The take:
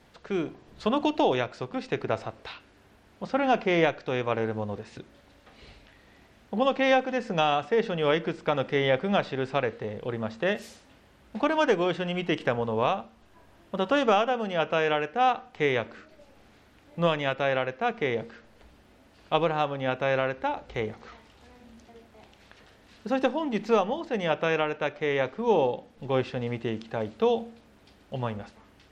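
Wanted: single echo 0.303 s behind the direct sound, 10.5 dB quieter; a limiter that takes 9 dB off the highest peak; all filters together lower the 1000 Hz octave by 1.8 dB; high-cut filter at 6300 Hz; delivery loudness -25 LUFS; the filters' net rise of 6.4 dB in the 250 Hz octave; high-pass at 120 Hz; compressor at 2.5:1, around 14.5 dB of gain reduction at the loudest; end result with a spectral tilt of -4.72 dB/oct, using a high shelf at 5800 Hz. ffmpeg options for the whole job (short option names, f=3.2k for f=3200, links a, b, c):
-af "highpass=120,lowpass=6.3k,equalizer=f=250:t=o:g=8.5,equalizer=f=1k:t=o:g=-3.5,highshelf=f=5.8k:g=8,acompressor=threshold=-39dB:ratio=2.5,alimiter=level_in=5.5dB:limit=-24dB:level=0:latency=1,volume=-5.5dB,aecho=1:1:303:0.299,volume=16dB"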